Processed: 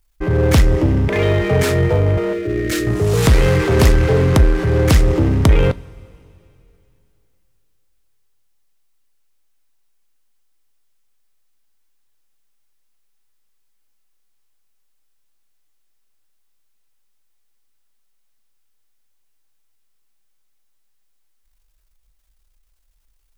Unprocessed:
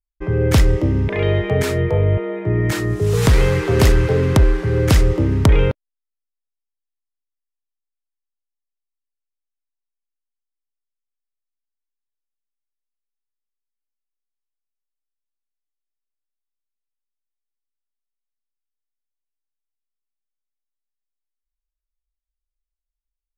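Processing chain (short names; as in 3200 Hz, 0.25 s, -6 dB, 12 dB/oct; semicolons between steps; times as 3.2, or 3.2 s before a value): power-law curve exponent 0.7; 2.33–2.87 fixed phaser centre 370 Hz, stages 4; two-slope reverb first 0.21 s, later 2.9 s, from -19 dB, DRR 15 dB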